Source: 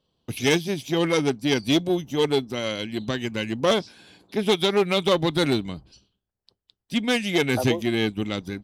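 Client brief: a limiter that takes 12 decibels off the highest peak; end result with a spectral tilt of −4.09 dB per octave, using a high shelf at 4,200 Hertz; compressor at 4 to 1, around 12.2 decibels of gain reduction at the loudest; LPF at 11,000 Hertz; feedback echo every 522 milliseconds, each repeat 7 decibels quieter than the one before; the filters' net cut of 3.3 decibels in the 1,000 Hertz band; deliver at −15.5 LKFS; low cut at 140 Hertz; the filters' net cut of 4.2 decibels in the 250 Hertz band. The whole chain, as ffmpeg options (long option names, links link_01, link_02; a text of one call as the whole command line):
ffmpeg -i in.wav -af "highpass=140,lowpass=11000,equalizer=frequency=250:width_type=o:gain=-5,equalizer=frequency=1000:width_type=o:gain=-3.5,highshelf=frequency=4200:gain=-8.5,acompressor=threshold=-34dB:ratio=4,alimiter=level_in=9dB:limit=-24dB:level=0:latency=1,volume=-9dB,aecho=1:1:522|1044|1566|2088|2610:0.447|0.201|0.0905|0.0407|0.0183,volume=26.5dB" out.wav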